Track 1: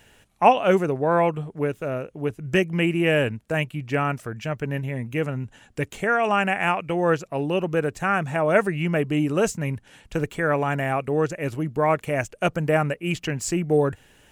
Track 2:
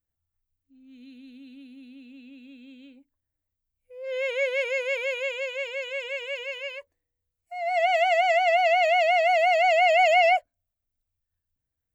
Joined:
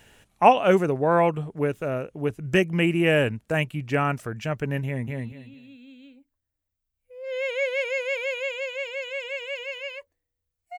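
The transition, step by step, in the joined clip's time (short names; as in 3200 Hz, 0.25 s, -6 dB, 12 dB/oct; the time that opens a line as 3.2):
track 1
4.85–5.1 echo throw 0.22 s, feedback 20%, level -2.5 dB
5.1 switch to track 2 from 1.9 s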